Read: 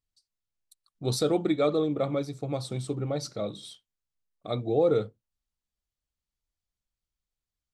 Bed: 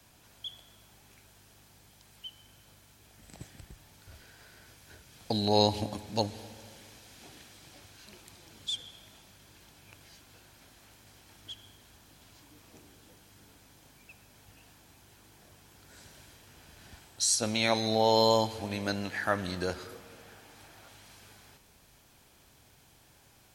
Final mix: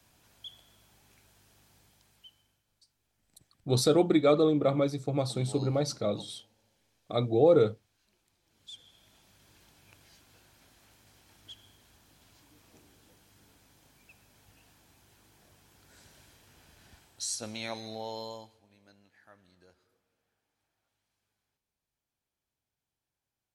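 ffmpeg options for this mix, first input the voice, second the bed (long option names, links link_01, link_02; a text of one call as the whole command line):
ffmpeg -i stem1.wav -i stem2.wav -filter_complex "[0:a]adelay=2650,volume=2dB[link_01];[1:a]volume=12dB,afade=type=out:start_time=1.79:duration=0.84:silence=0.149624,afade=type=in:start_time=8.43:duration=1.07:silence=0.149624,afade=type=out:start_time=16.63:duration=1.98:silence=0.0595662[link_02];[link_01][link_02]amix=inputs=2:normalize=0" out.wav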